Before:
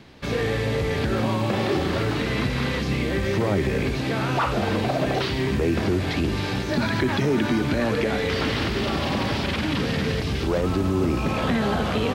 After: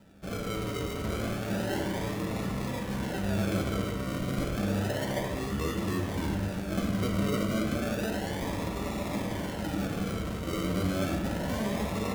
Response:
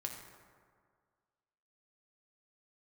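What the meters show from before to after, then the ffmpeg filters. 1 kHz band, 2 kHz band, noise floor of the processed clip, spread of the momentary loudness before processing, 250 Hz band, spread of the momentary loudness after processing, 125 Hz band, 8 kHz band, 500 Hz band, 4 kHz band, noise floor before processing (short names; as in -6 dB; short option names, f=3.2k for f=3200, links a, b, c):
-9.0 dB, -10.5 dB, -35 dBFS, 2 LU, -6.5 dB, 4 LU, -7.5 dB, -2.0 dB, -9.0 dB, -10.5 dB, -27 dBFS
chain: -filter_complex "[0:a]acrusher=samples=40:mix=1:aa=0.000001:lfo=1:lforange=24:lforate=0.31[a];[1:a]atrim=start_sample=2205,asetrate=70560,aresample=44100[b];[a][b]afir=irnorm=-1:irlink=0,volume=-3.5dB"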